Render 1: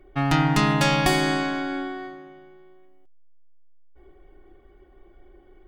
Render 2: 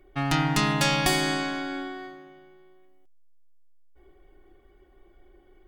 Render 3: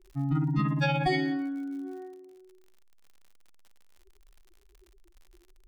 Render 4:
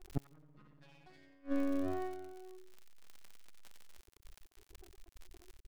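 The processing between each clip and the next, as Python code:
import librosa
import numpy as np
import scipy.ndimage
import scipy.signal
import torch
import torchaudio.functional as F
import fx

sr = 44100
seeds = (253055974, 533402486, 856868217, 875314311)

y1 = fx.high_shelf(x, sr, hz=2800.0, db=7.5)
y1 = y1 * 10.0 ** (-4.5 / 20.0)
y2 = fx.spec_expand(y1, sr, power=3.3)
y2 = fx.dmg_crackle(y2, sr, seeds[0], per_s=77.0, level_db=-44.0)
y2 = y2 * 10.0 ** (-2.0 / 20.0)
y3 = fx.gate_flip(y2, sr, shuts_db=-25.0, range_db=-37)
y3 = fx.echo_wet_highpass(y3, sr, ms=90, feedback_pct=32, hz=1700.0, wet_db=-4.5)
y3 = np.maximum(y3, 0.0)
y3 = y3 * 10.0 ** (6.0 / 20.0)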